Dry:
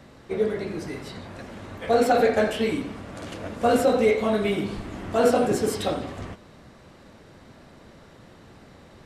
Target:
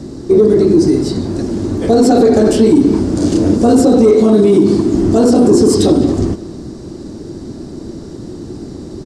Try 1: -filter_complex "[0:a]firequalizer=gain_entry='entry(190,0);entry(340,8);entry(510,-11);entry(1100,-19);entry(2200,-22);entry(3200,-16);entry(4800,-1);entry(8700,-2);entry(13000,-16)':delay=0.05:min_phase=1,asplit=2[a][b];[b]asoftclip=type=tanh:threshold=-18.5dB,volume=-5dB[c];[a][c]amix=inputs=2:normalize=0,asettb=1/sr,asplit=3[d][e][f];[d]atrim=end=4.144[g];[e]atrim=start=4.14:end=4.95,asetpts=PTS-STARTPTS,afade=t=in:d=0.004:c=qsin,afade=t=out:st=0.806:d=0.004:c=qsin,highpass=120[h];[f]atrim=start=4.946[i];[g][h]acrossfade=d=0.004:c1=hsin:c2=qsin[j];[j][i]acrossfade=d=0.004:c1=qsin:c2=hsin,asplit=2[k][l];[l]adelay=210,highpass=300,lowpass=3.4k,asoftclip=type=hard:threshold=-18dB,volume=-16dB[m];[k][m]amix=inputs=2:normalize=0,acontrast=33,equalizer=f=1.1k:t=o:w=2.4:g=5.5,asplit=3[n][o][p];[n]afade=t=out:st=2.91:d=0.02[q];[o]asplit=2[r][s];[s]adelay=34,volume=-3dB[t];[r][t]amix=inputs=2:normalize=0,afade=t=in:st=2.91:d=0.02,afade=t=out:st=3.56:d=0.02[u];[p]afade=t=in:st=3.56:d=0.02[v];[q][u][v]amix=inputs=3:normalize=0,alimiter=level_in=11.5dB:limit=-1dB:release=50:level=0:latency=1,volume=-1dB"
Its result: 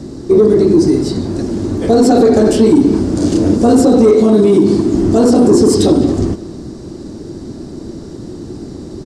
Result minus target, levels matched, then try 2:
soft clip: distortion +11 dB
-filter_complex "[0:a]firequalizer=gain_entry='entry(190,0);entry(340,8);entry(510,-11);entry(1100,-19);entry(2200,-22);entry(3200,-16);entry(4800,-1);entry(8700,-2);entry(13000,-16)':delay=0.05:min_phase=1,asplit=2[a][b];[b]asoftclip=type=tanh:threshold=-11dB,volume=-5dB[c];[a][c]amix=inputs=2:normalize=0,asettb=1/sr,asplit=3[d][e][f];[d]atrim=end=4.144[g];[e]atrim=start=4.14:end=4.95,asetpts=PTS-STARTPTS,afade=t=in:d=0.004:c=qsin,afade=t=out:st=0.806:d=0.004:c=qsin,highpass=120[h];[f]atrim=start=4.946[i];[g][h]acrossfade=d=0.004:c1=hsin:c2=qsin[j];[j][i]acrossfade=d=0.004:c1=qsin:c2=hsin,asplit=2[k][l];[l]adelay=210,highpass=300,lowpass=3.4k,asoftclip=type=hard:threshold=-18dB,volume=-16dB[m];[k][m]amix=inputs=2:normalize=0,acontrast=33,equalizer=f=1.1k:t=o:w=2.4:g=5.5,asplit=3[n][o][p];[n]afade=t=out:st=2.91:d=0.02[q];[o]asplit=2[r][s];[s]adelay=34,volume=-3dB[t];[r][t]amix=inputs=2:normalize=0,afade=t=in:st=2.91:d=0.02,afade=t=out:st=3.56:d=0.02[u];[p]afade=t=in:st=3.56:d=0.02[v];[q][u][v]amix=inputs=3:normalize=0,alimiter=level_in=11.5dB:limit=-1dB:release=50:level=0:latency=1,volume=-1dB"

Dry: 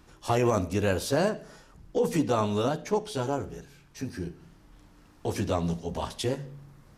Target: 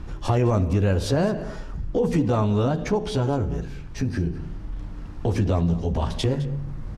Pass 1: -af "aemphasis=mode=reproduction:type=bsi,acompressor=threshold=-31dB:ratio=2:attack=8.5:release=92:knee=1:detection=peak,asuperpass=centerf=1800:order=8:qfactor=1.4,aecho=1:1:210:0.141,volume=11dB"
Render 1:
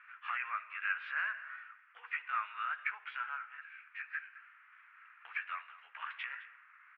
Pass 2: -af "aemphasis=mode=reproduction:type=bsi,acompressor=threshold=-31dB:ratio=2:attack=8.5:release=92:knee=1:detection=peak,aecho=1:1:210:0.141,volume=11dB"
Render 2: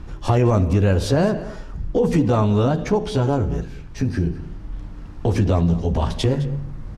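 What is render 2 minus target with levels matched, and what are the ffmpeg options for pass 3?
compressor: peak gain reduction -4 dB
-af "aemphasis=mode=reproduction:type=bsi,acompressor=threshold=-38.5dB:ratio=2:attack=8.5:release=92:knee=1:detection=peak,aecho=1:1:210:0.141,volume=11dB"

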